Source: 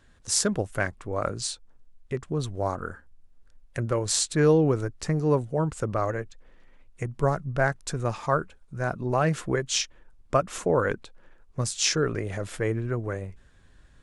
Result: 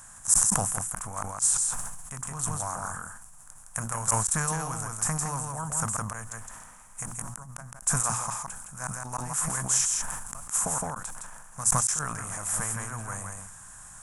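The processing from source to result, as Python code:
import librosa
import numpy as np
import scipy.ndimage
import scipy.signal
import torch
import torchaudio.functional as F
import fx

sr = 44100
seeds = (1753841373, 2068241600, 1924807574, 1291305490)

y = fx.bin_compress(x, sr, power=0.6)
y = fx.low_shelf_res(y, sr, hz=500.0, db=-9.0, q=1.5)
y = fx.hum_notches(y, sr, base_hz=60, count=6)
y = fx.gate_flip(y, sr, shuts_db=-10.0, range_db=-32)
y = fx.curve_eq(y, sr, hz=(130.0, 240.0, 370.0, 590.0, 920.0, 1700.0, 2900.0, 4400.0, 7100.0, 12000.0), db=(0, -3, -18, -17, -4, -8, -14, -16, 8, 15))
y = y + 10.0 ** (-4.0 / 20.0) * np.pad(y, (int(163 * sr / 1000.0), 0))[:len(y)]
y = fx.sustainer(y, sr, db_per_s=36.0)
y = y * 10.0 ** (-3.0 / 20.0)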